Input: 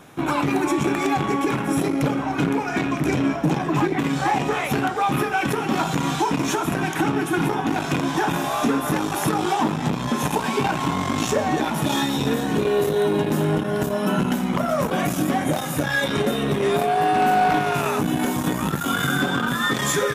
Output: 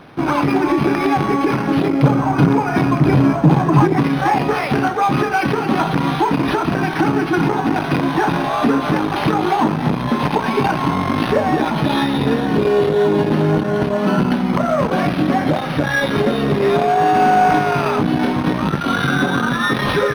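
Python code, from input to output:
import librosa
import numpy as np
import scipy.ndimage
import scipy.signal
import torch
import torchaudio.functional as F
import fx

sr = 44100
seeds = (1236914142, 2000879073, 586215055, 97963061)

y = fx.graphic_eq_10(x, sr, hz=(125, 1000, 2000), db=(8, 4, -3), at=(2.03, 4.03))
y = np.interp(np.arange(len(y)), np.arange(len(y))[::6], y[::6])
y = F.gain(torch.from_numpy(y), 5.5).numpy()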